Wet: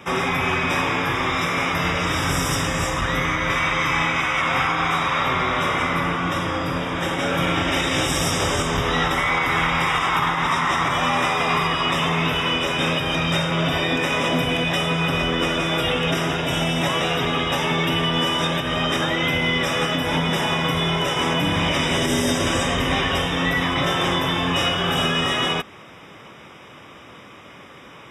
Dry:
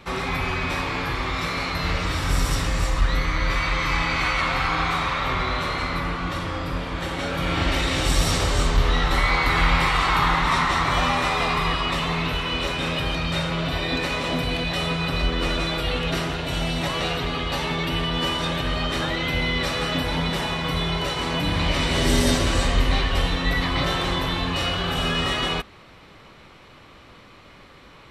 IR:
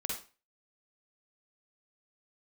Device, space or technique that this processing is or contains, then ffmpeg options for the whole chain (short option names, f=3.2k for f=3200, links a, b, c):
PA system with an anti-feedback notch: -af "highpass=120,asuperstop=centerf=4300:order=20:qfactor=4.5,alimiter=limit=-16.5dB:level=0:latency=1:release=174,volume=5.5dB"